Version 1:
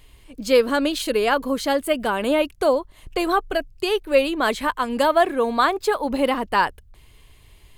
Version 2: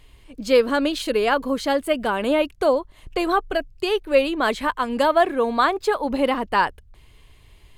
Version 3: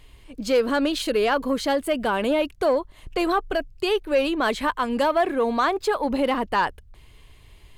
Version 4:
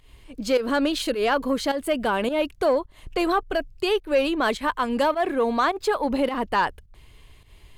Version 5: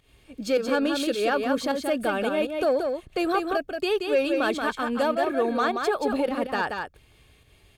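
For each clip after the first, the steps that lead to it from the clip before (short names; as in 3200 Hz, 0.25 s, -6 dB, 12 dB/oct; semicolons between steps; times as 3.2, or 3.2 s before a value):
high shelf 8000 Hz -8 dB
in parallel at +2.5 dB: limiter -14.5 dBFS, peak gain reduction 9 dB; on the sum: soft clip -4.5 dBFS, distortion -22 dB; gain -6.5 dB
pump 105 bpm, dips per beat 1, -12 dB, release 0.159 s
notch comb 1000 Hz; on a send: echo 0.179 s -5 dB; on the sum: gain -2 dB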